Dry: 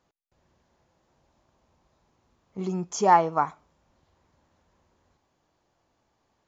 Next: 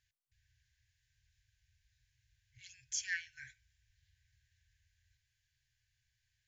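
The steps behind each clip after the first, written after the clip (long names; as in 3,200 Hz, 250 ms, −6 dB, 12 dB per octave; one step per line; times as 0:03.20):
brick-wall band-stop 130–1,500 Hz
level −3.5 dB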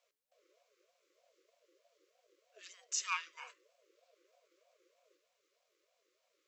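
ring modulator whose carrier an LFO sweeps 530 Hz, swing 20%, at 3.2 Hz
level +4.5 dB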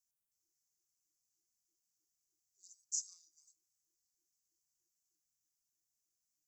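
inverse Chebyshev band-stop filter 490–2,600 Hz, stop band 50 dB
phaser with its sweep stopped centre 1,300 Hz, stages 4
level +3 dB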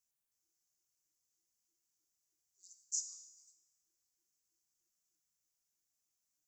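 tuned comb filter 67 Hz, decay 1.1 s, harmonics all, mix 70%
level +9 dB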